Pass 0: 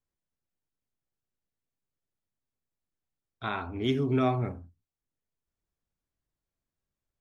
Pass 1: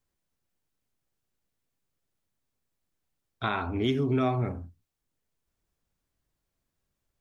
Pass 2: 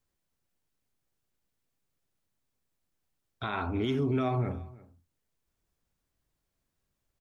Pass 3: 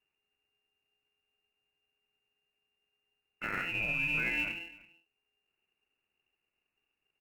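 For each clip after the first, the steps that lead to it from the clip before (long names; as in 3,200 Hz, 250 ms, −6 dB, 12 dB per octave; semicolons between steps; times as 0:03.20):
downward compressor 2.5 to 1, threshold −33 dBFS, peak gain reduction 8 dB; level +7 dB
brickwall limiter −21 dBFS, peak gain reduction 7 dB; single-tap delay 333 ms −21.5 dB
voice inversion scrambler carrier 2,800 Hz; high-frequency loss of the air 340 metres; in parallel at −10 dB: decimation without filtering 37×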